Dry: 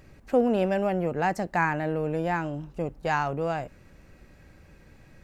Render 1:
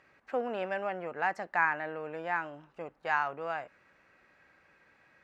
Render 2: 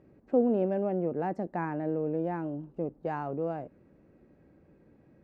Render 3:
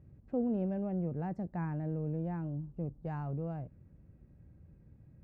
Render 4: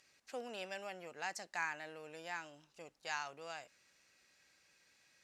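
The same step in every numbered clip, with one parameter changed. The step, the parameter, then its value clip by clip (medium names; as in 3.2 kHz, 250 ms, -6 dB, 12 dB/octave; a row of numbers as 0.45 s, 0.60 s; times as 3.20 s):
band-pass filter, frequency: 1.5 kHz, 320 Hz, 110 Hz, 5.6 kHz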